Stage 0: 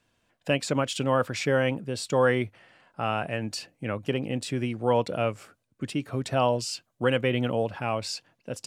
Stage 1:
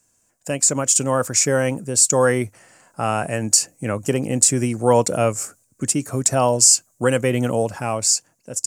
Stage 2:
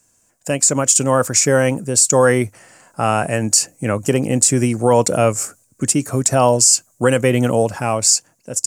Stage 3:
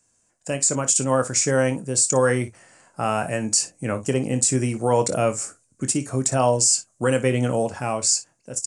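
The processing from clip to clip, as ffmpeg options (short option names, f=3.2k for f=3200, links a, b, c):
-af "highshelf=f=5k:t=q:w=3:g=13.5,dynaudnorm=f=120:g=13:m=11.5dB"
-af "alimiter=level_in=5.5dB:limit=-1dB:release=50:level=0:latency=1,volume=-1dB"
-filter_complex "[0:a]aresample=22050,aresample=44100,asplit=2[a][b];[b]aecho=0:1:23|57:0.316|0.168[c];[a][c]amix=inputs=2:normalize=0,volume=-6.5dB"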